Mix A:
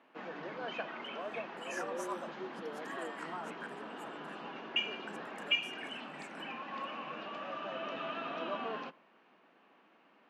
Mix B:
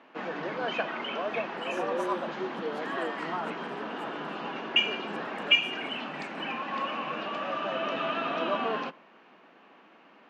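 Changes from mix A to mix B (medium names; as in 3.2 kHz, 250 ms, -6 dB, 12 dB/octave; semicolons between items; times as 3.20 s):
speech -4.0 dB; background +9.0 dB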